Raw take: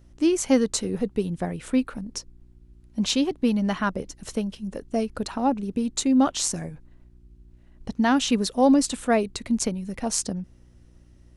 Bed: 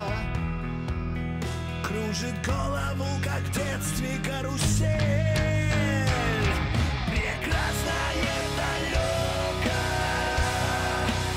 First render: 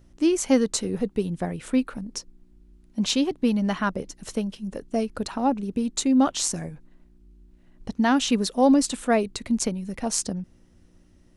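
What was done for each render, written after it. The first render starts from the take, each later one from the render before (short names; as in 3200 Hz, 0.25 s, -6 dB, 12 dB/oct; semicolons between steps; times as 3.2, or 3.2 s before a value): de-hum 60 Hz, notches 2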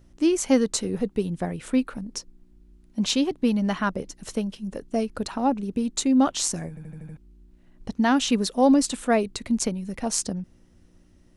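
6.69 stutter in place 0.08 s, 6 plays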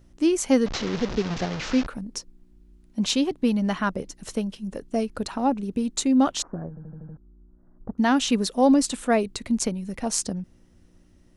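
0.66–1.87 delta modulation 32 kbps, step -25 dBFS; 6.42–7.98 elliptic low-pass 1400 Hz, stop band 60 dB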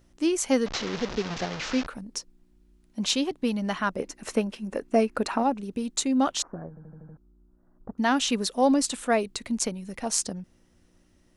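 3.99–5.43 spectral gain 210–2800 Hz +7 dB; low shelf 340 Hz -7.5 dB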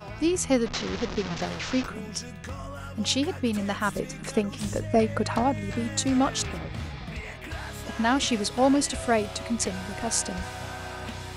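add bed -10 dB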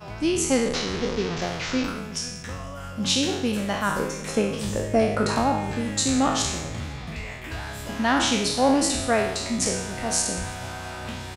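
spectral trails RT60 0.80 s; feedback echo 0.168 s, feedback 59%, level -21.5 dB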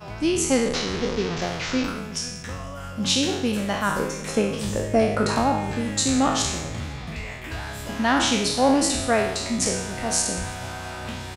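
gain +1 dB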